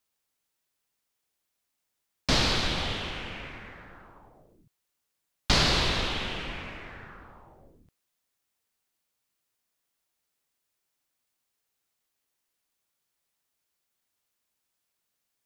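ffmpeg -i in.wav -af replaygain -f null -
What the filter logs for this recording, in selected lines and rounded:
track_gain = +10.6 dB
track_peak = 0.303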